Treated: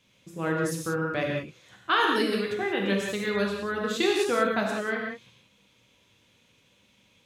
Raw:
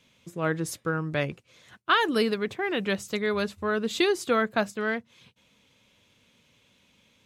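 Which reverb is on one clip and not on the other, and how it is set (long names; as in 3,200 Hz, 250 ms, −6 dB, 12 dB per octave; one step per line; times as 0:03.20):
reverb whose tail is shaped and stops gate 210 ms flat, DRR −1.5 dB
level −3.5 dB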